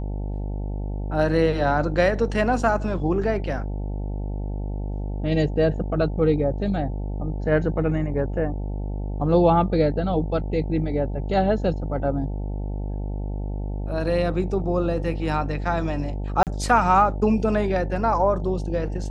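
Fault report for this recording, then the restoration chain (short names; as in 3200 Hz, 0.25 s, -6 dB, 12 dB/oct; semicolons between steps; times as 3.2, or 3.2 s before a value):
buzz 50 Hz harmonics 18 -28 dBFS
16.43–16.47 gap 38 ms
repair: de-hum 50 Hz, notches 18; interpolate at 16.43, 38 ms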